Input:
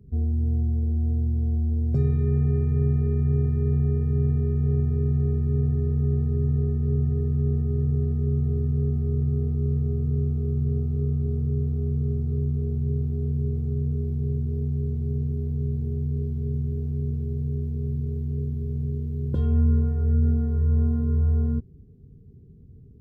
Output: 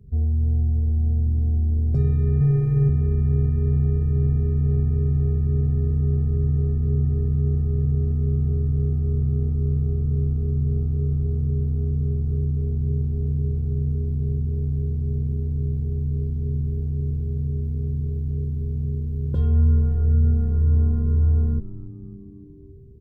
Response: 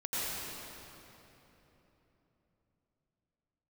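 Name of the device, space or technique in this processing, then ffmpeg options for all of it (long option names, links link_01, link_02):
low shelf boost with a cut just above: -filter_complex "[0:a]asettb=1/sr,asplit=3[link_01][link_02][link_03];[link_01]atrim=end=2.404[link_04];[link_02]atrim=start=2.4:end=2.89,asetpts=PTS-STARTPTS,afade=type=in:duration=0.004:curve=qsin,afade=type=out:start_time=0.486:duration=0.004:curve=qsin,aecho=1:1:6.6:0.99,atrim=end_sample=21609[link_05];[link_03]atrim=start=2.886[link_06];[link_04][link_05]acrossfade=duration=0.004:curve1=hsin:curve2=qsin[link_07];[link_07][link_06]acrossfade=duration=0.004:curve1=qsin:curve2=hsin,lowshelf=frequency=81:gain=6.5,equalizer=frequency=280:width_type=o:width=0.67:gain=-5.5,asplit=6[link_08][link_09][link_10][link_11][link_12][link_13];[link_09]adelay=280,afreqshift=-94,volume=-16.5dB[link_14];[link_10]adelay=560,afreqshift=-188,volume=-21.4dB[link_15];[link_11]adelay=840,afreqshift=-282,volume=-26.3dB[link_16];[link_12]adelay=1120,afreqshift=-376,volume=-31.1dB[link_17];[link_13]adelay=1400,afreqshift=-470,volume=-36dB[link_18];[link_08][link_14][link_15][link_16][link_17][link_18]amix=inputs=6:normalize=0"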